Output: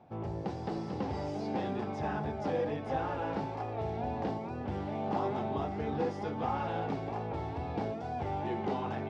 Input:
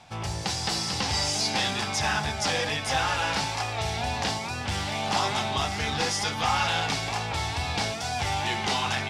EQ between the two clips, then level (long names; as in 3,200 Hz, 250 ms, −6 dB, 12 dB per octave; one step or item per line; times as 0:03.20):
resonant band-pass 380 Hz, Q 1.3
spectral tilt −2 dB per octave
0.0 dB